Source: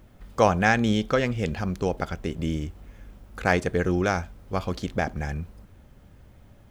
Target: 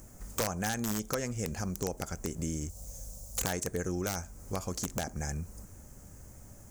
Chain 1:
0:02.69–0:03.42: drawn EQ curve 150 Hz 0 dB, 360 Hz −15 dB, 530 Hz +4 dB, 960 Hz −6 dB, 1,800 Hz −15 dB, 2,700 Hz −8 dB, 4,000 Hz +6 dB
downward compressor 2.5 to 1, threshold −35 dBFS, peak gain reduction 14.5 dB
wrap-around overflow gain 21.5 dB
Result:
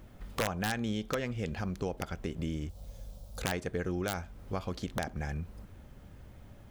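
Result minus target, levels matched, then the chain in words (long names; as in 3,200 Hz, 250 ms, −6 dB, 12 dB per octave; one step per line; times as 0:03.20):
8,000 Hz band −10.0 dB
0:02.69–0:03.42: drawn EQ curve 150 Hz 0 dB, 360 Hz −15 dB, 530 Hz +4 dB, 960 Hz −6 dB, 1,800 Hz −15 dB, 2,700 Hz −8 dB, 4,000 Hz +6 dB
downward compressor 2.5 to 1, threshold −35 dBFS, peak gain reduction 14.5 dB
high shelf with overshoot 4,900 Hz +12.5 dB, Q 3
wrap-around overflow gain 21.5 dB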